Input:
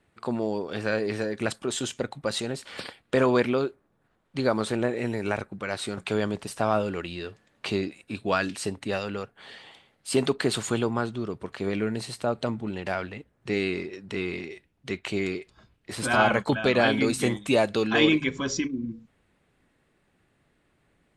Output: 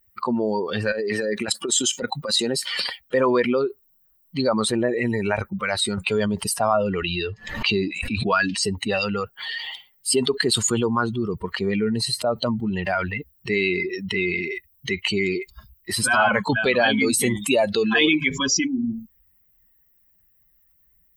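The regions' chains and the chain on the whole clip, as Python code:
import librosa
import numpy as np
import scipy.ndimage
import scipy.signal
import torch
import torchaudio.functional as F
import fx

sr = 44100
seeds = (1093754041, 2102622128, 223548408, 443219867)

y = fx.chain(x, sr, fx.highpass(hz=150.0, slope=12),
    fx.over_compress(threshold_db=-30.0, ratio=-0.5), at=(0.92, 2.82))
y = fx.chain(y, sr, fx.lowpass(hz=6900.0, slope=12),
    fx.pre_swell(db_per_s=92.0), at=(6.83, 8.63))
y = fx.bin_expand(y, sr, power=2.0)
y = fx.low_shelf(y, sr, hz=290.0, db=-12.0)
y = fx.env_flatten(y, sr, amount_pct=70)
y = y * librosa.db_to_amplitude(5.5)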